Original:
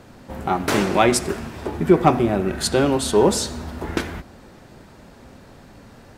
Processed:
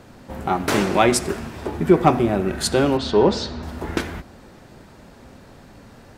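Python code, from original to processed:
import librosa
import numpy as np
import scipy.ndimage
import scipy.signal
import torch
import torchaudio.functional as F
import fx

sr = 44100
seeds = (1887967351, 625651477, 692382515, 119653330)

y = fx.cheby1_lowpass(x, sr, hz=4700.0, order=3, at=(2.97, 3.63))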